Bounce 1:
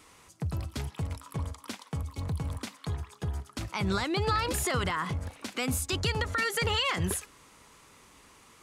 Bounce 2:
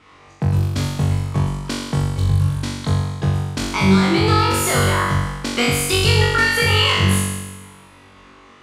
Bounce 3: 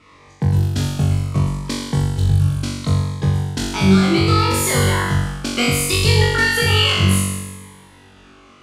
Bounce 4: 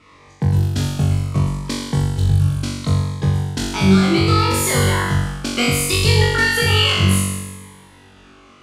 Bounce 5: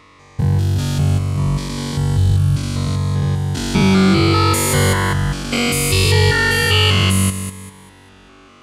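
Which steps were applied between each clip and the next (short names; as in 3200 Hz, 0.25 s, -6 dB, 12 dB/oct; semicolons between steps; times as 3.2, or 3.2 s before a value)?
transient shaper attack +7 dB, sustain -5 dB; low-pass opened by the level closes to 3000 Hz, open at -27 dBFS; flutter echo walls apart 3.6 m, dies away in 1.2 s; gain +5 dB
cascading phaser falling 0.68 Hz; gain +1.5 dB
nothing audible
stepped spectrum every 0.2 s; gain +3 dB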